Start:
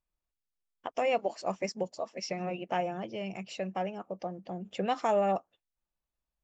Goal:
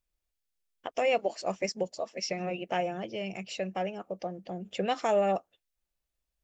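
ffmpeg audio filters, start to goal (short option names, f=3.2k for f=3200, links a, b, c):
-af "equalizer=f=125:t=o:w=1:g=-4,equalizer=f=250:t=o:w=1:g=-4,equalizer=f=1k:t=o:w=1:g=-7,volume=4.5dB"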